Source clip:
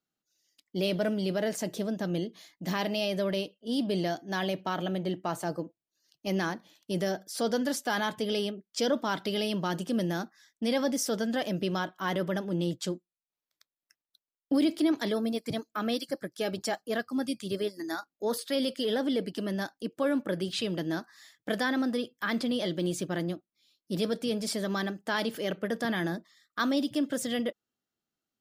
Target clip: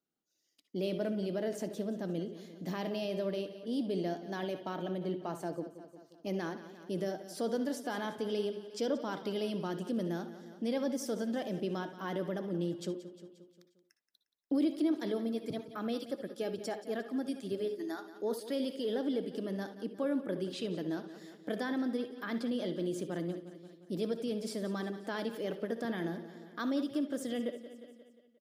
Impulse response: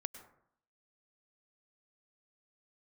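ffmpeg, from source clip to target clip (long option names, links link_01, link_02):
-filter_complex "[0:a]aecho=1:1:177|354|531|708|885:0.168|0.0856|0.0437|0.0223|0.0114[link_01];[1:a]atrim=start_sample=2205,atrim=end_sample=6174,asetrate=74970,aresample=44100[link_02];[link_01][link_02]afir=irnorm=-1:irlink=0,asplit=2[link_03][link_04];[link_04]acompressor=threshold=-50dB:ratio=6,volume=2.5dB[link_05];[link_03][link_05]amix=inputs=2:normalize=0,equalizer=frequency=350:width=0.57:gain=8,volume=-6dB"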